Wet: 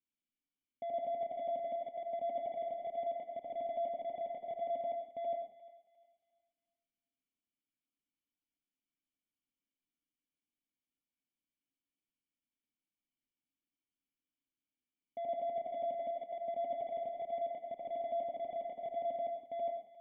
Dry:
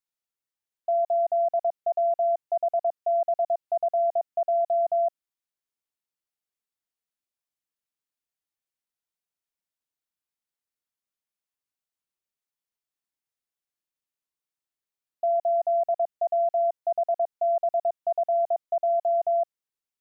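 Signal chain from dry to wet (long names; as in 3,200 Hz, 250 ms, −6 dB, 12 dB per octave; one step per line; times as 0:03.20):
slices reordered back to front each 82 ms, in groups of 5
in parallel at −11 dB: gain into a clipping stage and back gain 27.5 dB
on the sum: formant resonators in series i
feedback echo with a high-pass in the loop 352 ms, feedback 38%, high-pass 790 Hz, level −15 dB
on a send at −2.5 dB: convolution reverb RT60 0.35 s, pre-delay 50 ms
on the sum: level +8.5 dB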